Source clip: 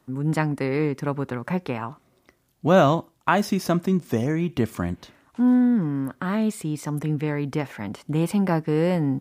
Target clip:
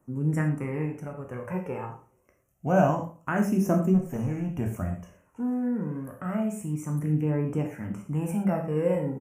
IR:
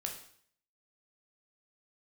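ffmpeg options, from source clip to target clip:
-filter_complex "[0:a]asettb=1/sr,asplit=3[link_01][link_02][link_03];[link_01]atrim=end=0.854[link_04];[link_02]atrim=start=0.85:end=1.33,asetpts=PTS-STARTPTS,afade=type=in:duration=0.004:curve=qsin,afade=type=out:start_time=0.476:duration=0.004:curve=qsin,acompressor=threshold=-26dB:ratio=6[link_05];[link_03]atrim=start=1.326[link_06];[link_04][link_05]acrossfade=duration=0.004:curve1=hsin:curve2=qsin[link_07];[link_07][link_06]acrossfade=duration=0.004:curve1=qsin:curve2=hsin,flanger=delay=0.1:depth=2.3:regen=30:speed=0.27:shape=triangular,asplit=3[link_08][link_09][link_10];[link_08]afade=type=out:start_time=3.93:duration=0.02[link_11];[link_09]asoftclip=type=hard:threshold=-25dB,afade=type=in:start_time=3.93:duration=0.02,afade=type=out:start_time=4.5:duration=0.02[link_12];[link_10]afade=type=in:start_time=4.5:duration=0.02[link_13];[link_11][link_12][link_13]amix=inputs=3:normalize=0,asuperstop=centerf=4100:order=8:qfactor=1.4,equalizer=frequency=2100:width=0.63:gain=-5.5,asplit=2[link_14][link_15];[link_15]adelay=85,lowpass=frequency=2000:poles=1,volume=-16dB,asplit=2[link_16][link_17];[link_17]adelay=85,lowpass=frequency=2000:poles=1,volume=0.3,asplit=2[link_18][link_19];[link_19]adelay=85,lowpass=frequency=2000:poles=1,volume=0.3[link_20];[link_14][link_16][link_18][link_20]amix=inputs=4:normalize=0[link_21];[1:a]atrim=start_sample=2205,afade=type=out:start_time=0.18:duration=0.01,atrim=end_sample=8379[link_22];[link_21][link_22]afir=irnorm=-1:irlink=0"

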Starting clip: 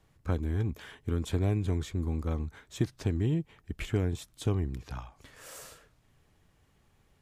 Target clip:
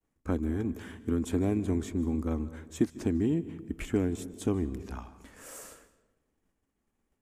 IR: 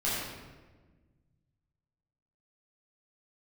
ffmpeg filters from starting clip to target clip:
-filter_complex "[0:a]equalizer=frequency=125:width_type=o:width=1:gain=-11,equalizer=frequency=250:width_type=o:width=1:gain=10,equalizer=frequency=4000:width_type=o:width=1:gain=-7,equalizer=frequency=8000:width_type=o:width=1:gain=4,agate=range=-33dB:threshold=-56dB:ratio=3:detection=peak,asplit=2[link_01][link_02];[1:a]atrim=start_sample=2205,asetrate=70560,aresample=44100,adelay=139[link_03];[link_02][link_03]afir=irnorm=-1:irlink=0,volume=-21.5dB[link_04];[link_01][link_04]amix=inputs=2:normalize=0"

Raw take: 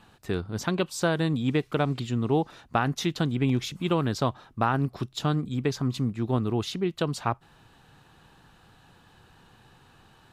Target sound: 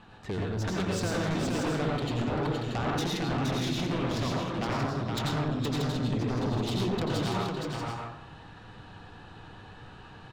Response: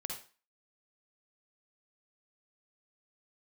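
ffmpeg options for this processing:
-filter_complex "[0:a]acompressor=threshold=-29dB:ratio=6[link_01];[1:a]atrim=start_sample=2205,asetrate=25578,aresample=44100[link_02];[link_01][link_02]afir=irnorm=-1:irlink=0,adynamicsmooth=sensitivity=6.5:basefreq=4800,aeval=exprs='0.112*sin(PI/2*2.51*val(0)/0.112)':channel_layout=same,aecho=1:1:470|632:0.631|0.473,volume=-8.5dB"

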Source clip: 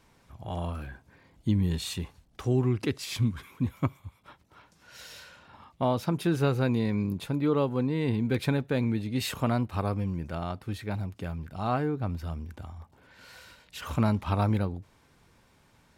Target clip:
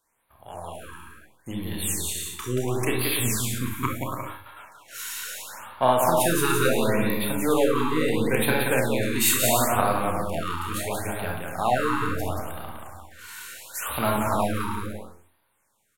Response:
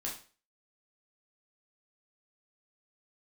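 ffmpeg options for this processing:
-filter_complex "[0:a]aeval=exprs='if(lt(val(0),0),0.708*val(0),val(0))':channel_layout=same,agate=range=-10dB:threshold=-57dB:ratio=16:detection=peak,dynaudnorm=framelen=320:gausssize=13:maxgain=9.5dB,aecho=1:1:180|288|352.8|391.7|415:0.631|0.398|0.251|0.158|0.1,asplit=2[link_01][link_02];[1:a]atrim=start_sample=2205,adelay=31[link_03];[link_02][link_03]afir=irnorm=-1:irlink=0,volume=-2.5dB[link_04];[link_01][link_04]amix=inputs=2:normalize=0,aexciter=amount=14.4:drive=4.4:freq=7100,acrossover=split=480 5300:gain=0.2 1 0.2[link_05][link_06][link_07];[link_05][link_06][link_07]amix=inputs=3:normalize=0,bandreject=frequency=50.38:width_type=h:width=4,bandreject=frequency=100.76:width_type=h:width=4,bandreject=frequency=151.14:width_type=h:width=4,afftfilt=real='re*(1-between(b*sr/1024,590*pow(7000/590,0.5+0.5*sin(2*PI*0.73*pts/sr))/1.41,590*pow(7000/590,0.5+0.5*sin(2*PI*0.73*pts/sr))*1.41))':imag='im*(1-between(b*sr/1024,590*pow(7000/590,0.5+0.5*sin(2*PI*0.73*pts/sr))/1.41,590*pow(7000/590,0.5+0.5*sin(2*PI*0.73*pts/sr))*1.41))':win_size=1024:overlap=0.75"

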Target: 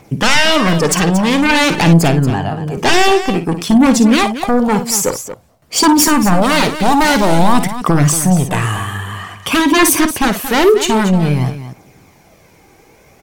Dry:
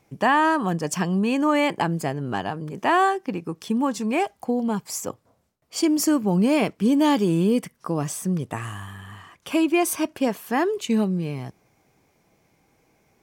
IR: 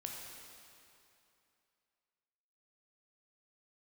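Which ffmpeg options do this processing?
-filter_complex "[0:a]asettb=1/sr,asplit=3[link_01][link_02][link_03];[link_01]atrim=end=2.304[link_04];[link_02]atrim=start=2.3:end=2.77,asetpts=PTS-STARTPTS,afade=type=in:duration=0.004:curve=qsin,afade=type=out:start_time=0.466:duration=0.004:curve=qsin,acrossover=split=160[link_05][link_06];[link_06]acompressor=threshold=-38dB:ratio=3[link_07];[link_05][link_07]amix=inputs=2:normalize=0[link_08];[link_03]atrim=start=2.766[link_09];[link_04][link_08]acrossfade=duration=0.004:curve1=hsin:curve2=qsin[link_10];[link_10][link_09]acrossfade=duration=0.004:curve1=qsin:curve2=hsin,aeval=exprs='0.376*sin(PI/2*3.98*val(0)/0.376)':channel_layout=same,aphaser=in_gain=1:out_gain=1:delay=2.7:decay=0.37:speed=0.51:type=triangular,aecho=1:1:54|231:0.299|0.266"

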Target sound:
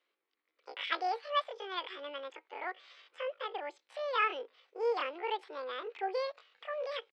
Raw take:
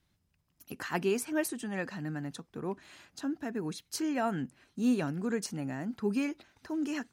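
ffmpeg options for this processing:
ffmpeg -i in.wav -af "asetrate=83250,aresample=44100,atempo=0.529732,highpass=frequency=480:width=0.5412,highpass=frequency=480:width=1.3066,equalizer=frequency=650:width_type=q:width=4:gain=-8,equalizer=frequency=1200:width_type=q:width=4:gain=4,equalizer=frequency=2200:width_type=q:width=4:gain=7,lowpass=frequency=4000:width=0.5412,lowpass=frequency=4000:width=1.3066" out.wav

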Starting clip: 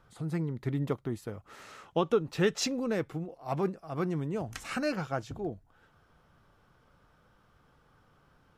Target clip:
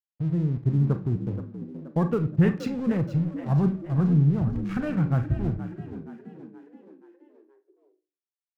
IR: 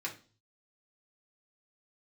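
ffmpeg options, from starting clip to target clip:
-filter_complex "[0:a]afwtdn=0.01,bass=frequency=250:gain=10,treble=frequency=4000:gain=-15,aeval=exprs='sgn(val(0))*max(abs(val(0))-0.00501,0)':channel_layout=same,asubboost=boost=5:cutoff=160,asplit=6[link_01][link_02][link_03][link_04][link_05][link_06];[link_02]adelay=475,afreqshift=55,volume=-12.5dB[link_07];[link_03]adelay=950,afreqshift=110,volume=-18.9dB[link_08];[link_04]adelay=1425,afreqshift=165,volume=-25.3dB[link_09];[link_05]adelay=1900,afreqshift=220,volume=-31.6dB[link_10];[link_06]adelay=2375,afreqshift=275,volume=-38dB[link_11];[link_01][link_07][link_08][link_09][link_10][link_11]amix=inputs=6:normalize=0,asplit=2[link_12][link_13];[1:a]atrim=start_sample=2205,adelay=35[link_14];[link_13][link_14]afir=irnorm=-1:irlink=0,volume=-10dB[link_15];[link_12][link_15]amix=inputs=2:normalize=0"

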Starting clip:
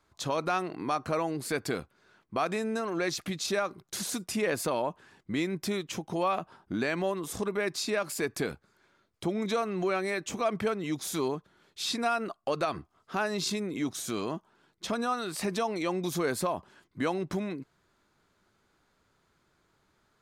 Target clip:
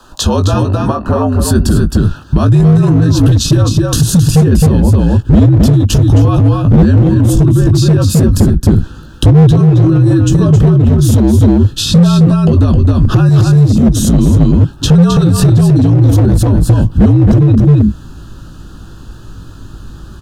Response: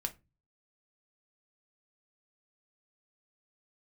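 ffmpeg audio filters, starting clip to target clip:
-filter_complex "[0:a]asubboost=boost=8:cutoff=250,acrossover=split=320[link_01][link_02];[link_02]acompressor=threshold=-44dB:ratio=6[link_03];[link_01][link_03]amix=inputs=2:normalize=0,asuperstop=centerf=2200:order=8:qfactor=3,asplit=2[link_04][link_05];[link_05]adelay=18,volume=-6.5dB[link_06];[link_04][link_06]amix=inputs=2:normalize=0,afreqshift=-62,volume=22dB,asoftclip=hard,volume=-22dB,asettb=1/sr,asplit=3[link_07][link_08][link_09];[link_07]atrim=end=0.654[link_10];[link_08]atrim=start=0.65:end=1.4,asetpts=PTS-STARTPTS,afade=type=in:duration=0.004:curve=qsin,afade=type=out:start_time=0.746:duration=0.004:curve=qsin,acrossover=split=330 2200:gain=0.224 1 0.251[link_11][link_12][link_13];[link_11][link_12][link_13]amix=inputs=3:normalize=0[link_14];[link_09]atrim=start=1.396[link_15];[link_10][link_14]acrossfade=duration=0.004:curve1=hsin:curve2=qsin[link_16];[link_16][link_15]acrossfade=duration=0.004:curve1=qsin:curve2=hsin,asettb=1/sr,asplit=3[link_17][link_18][link_19];[link_17]atrim=end=13.294[link_20];[link_18]atrim=start=13.29:end=13.83,asetpts=PTS-STARTPTS,afade=type=in:duration=0.004:curve=qsin,afade=type=out:start_time=0.536:duration=0.004:curve=qsin,acrossover=split=590|5500[link_21][link_22][link_23];[link_21]acompressor=threshold=-34dB:ratio=4[link_24];[link_22]acompressor=threshold=-59dB:ratio=4[link_25];[link_23]acompressor=threshold=-55dB:ratio=4[link_26];[link_24][link_25][link_26]amix=inputs=3:normalize=0[link_27];[link_19]atrim=start=13.826[link_28];[link_20][link_27]acrossfade=duration=0.004:curve1=hsin:curve2=qsin[link_29];[link_29][link_28]acrossfade=duration=0.004:curve1=qsin:curve2=hsin,aecho=1:1:265:0.562,alimiter=level_in=29dB:limit=-1dB:release=50:level=0:latency=1,volume=-1dB"

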